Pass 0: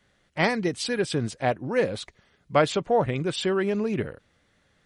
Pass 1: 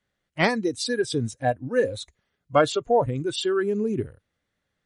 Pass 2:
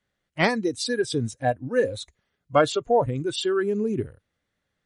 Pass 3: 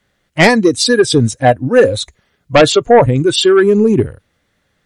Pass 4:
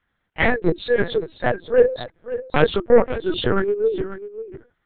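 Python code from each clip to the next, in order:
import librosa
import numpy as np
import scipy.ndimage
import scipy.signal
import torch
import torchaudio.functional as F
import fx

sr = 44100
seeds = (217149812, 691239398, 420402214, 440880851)

y1 = fx.noise_reduce_blind(x, sr, reduce_db=15)
y1 = y1 * librosa.db_to_amplitude(2.0)
y2 = y1
y3 = fx.fold_sine(y2, sr, drive_db=6, ceiling_db=-7.0)
y3 = y3 * librosa.db_to_amplitude(5.5)
y4 = scipy.signal.sosfilt(scipy.signal.cheby1(6, 9, 330.0, 'highpass', fs=sr, output='sos'), y3)
y4 = y4 + 10.0 ** (-13.0 / 20.0) * np.pad(y4, (int(542 * sr / 1000.0), 0))[:len(y4)]
y4 = fx.lpc_vocoder(y4, sr, seeds[0], excitation='pitch_kept', order=8)
y4 = y4 * librosa.db_to_amplitude(-3.0)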